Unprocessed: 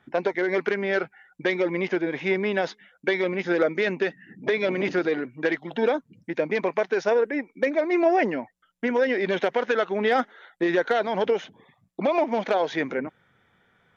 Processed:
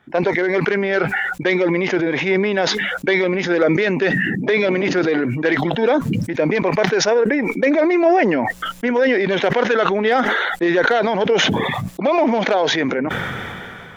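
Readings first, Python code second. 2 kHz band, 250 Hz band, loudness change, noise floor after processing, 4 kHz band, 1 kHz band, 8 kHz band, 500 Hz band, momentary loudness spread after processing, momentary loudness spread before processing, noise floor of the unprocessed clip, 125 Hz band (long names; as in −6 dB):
+9.0 dB, +9.0 dB, +7.5 dB, −37 dBFS, +13.0 dB, +7.5 dB, can't be measured, +6.5 dB, 5 LU, 7 LU, −67 dBFS, +14.0 dB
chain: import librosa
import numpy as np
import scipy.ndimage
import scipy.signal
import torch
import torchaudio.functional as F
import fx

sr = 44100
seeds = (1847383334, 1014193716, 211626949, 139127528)

y = fx.sustainer(x, sr, db_per_s=21.0)
y = y * 10.0 ** (5.0 / 20.0)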